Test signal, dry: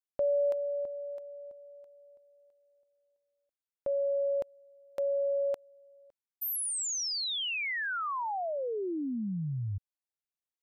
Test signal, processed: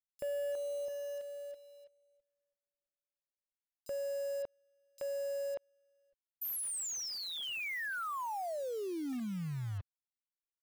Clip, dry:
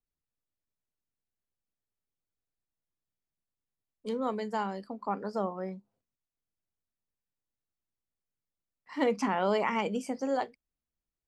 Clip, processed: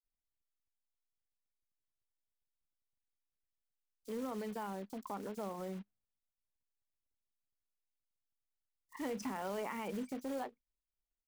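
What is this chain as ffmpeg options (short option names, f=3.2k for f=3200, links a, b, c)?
-filter_complex "[0:a]anlmdn=0.398,adynamicequalizer=threshold=0.00501:dfrequency=250:dqfactor=7.2:tfrequency=250:tqfactor=7.2:attack=5:release=100:ratio=0.375:range=2:mode=boostabove:tftype=bell,acrusher=bits=3:mode=log:mix=0:aa=0.000001,acompressor=threshold=-41dB:ratio=3:attack=0.69:release=49:detection=rms,acrossover=split=4200[a][b];[a]adelay=30[c];[c][b]amix=inputs=2:normalize=0,volume=2dB"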